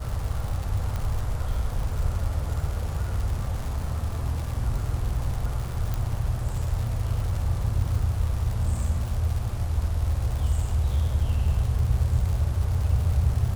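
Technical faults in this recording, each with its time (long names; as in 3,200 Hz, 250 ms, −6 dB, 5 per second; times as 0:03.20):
surface crackle 180 per second −31 dBFS
0:00.96: click
0:05.94: click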